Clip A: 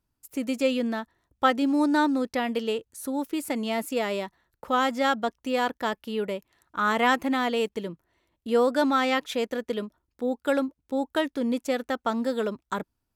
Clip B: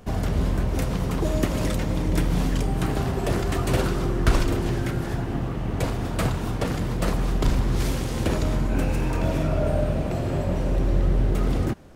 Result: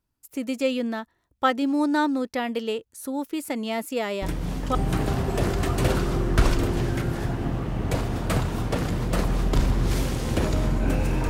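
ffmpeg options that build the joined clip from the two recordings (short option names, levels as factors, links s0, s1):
-filter_complex "[1:a]asplit=2[s0][s1];[0:a]apad=whole_dur=11.29,atrim=end=11.29,atrim=end=4.752[s2];[s1]atrim=start=2.638:end=9.18[s3];[s0]atrim=start=2.11:end=2.64,asetpts=PTS-STARTPTS,volume=0.473,afade=t=in:d=0.004:c=hsin,afade=t=out:st=0.526:d=0.004:c=hsin,adelay=4220[s4];[s2][s3]acrossfade=d=0.004:c1=hsin:c2=hsin[s5];[s5][s4]amix=inputs=2:normalize=0"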